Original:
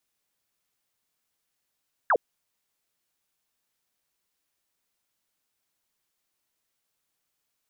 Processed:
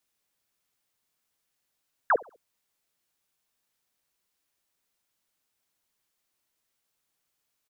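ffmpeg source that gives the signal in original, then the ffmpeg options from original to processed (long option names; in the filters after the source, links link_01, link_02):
-f lavfi -i "aevalsrc='0.133*clip(t/0.002,0,1)*clip((0.06-t)/0.002,0,1)*sin(2*PI*1800*0.06/log(400/1800)*(exp(log(400/1800)*t/0.06)-1))':duration=0.06:sample_rate=44100"
-filter_complex "[0:a]asplit=2[link_01][link_02];[link_02]adelay=67,lowpass=frequency=1200:poles=1,volume=-20dB,asplit=2[link_03][link_04];[link_04]adelay=67,lowpass=frequency=1200:poles=1,volume=0.44,asplit=2[link_05][link_06];[link_06]adelay=67,lowpass=frequency=1200:poles=1,volume=0.44[link_07];[link_01][link_03][link_05][link_07]amix=inputs=4:normalize=0"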